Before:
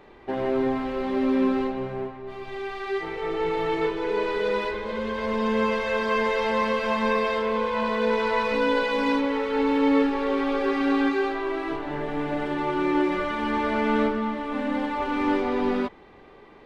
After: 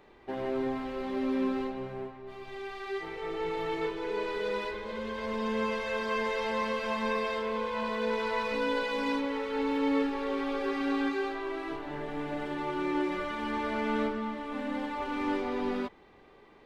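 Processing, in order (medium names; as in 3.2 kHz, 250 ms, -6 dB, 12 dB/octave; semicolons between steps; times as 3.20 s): treble shelf 4.4 kHz +6 dB; trim -7.5 dB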